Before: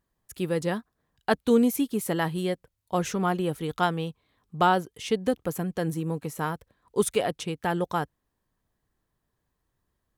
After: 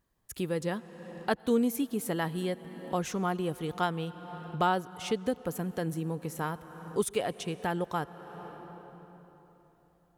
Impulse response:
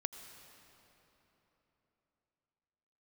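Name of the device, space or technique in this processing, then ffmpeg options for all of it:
ducked reverb: -filter_complex "[0:a]asplit=3[s0][s1][s2];[1:a]atrim=start_sample=2205[s3];[s1][s3]afir=irnorm=-1:irlink=0[s4];[s2]apad=whole_len=448738[s5];[s4][s5]sidechaincompress=threshold=0.0141:ratio=12:attack=35:release=414,volume=1.88[s6];[s0][s6]amix=inputs=2:normalize=0,volume=0.447"

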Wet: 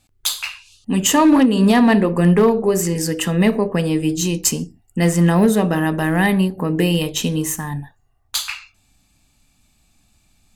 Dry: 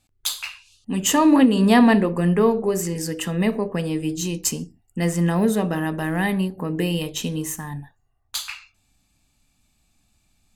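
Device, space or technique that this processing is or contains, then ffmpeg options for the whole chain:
limiter into clipper: -af "alimiter=limit=0.316:level=0:latency=1:release=462,asoftclip=type=hard:threshold=0.224,volume=2"

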